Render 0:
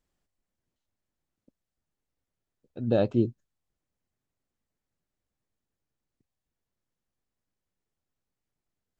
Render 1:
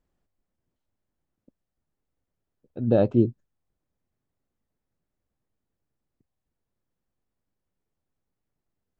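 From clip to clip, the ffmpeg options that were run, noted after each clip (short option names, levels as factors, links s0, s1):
-af "highshelf=f=2000:g=-11.5,volume=1.68"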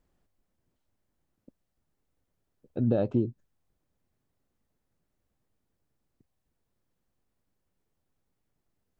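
-af "acompressor=threshold=0.0562:ratio=12,volume=1.5"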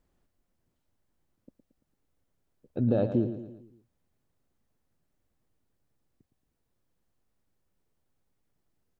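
-af "aecho=1:1:113|226|339|452|565:0.299|0.146|0.0717|0.0351|0.0172"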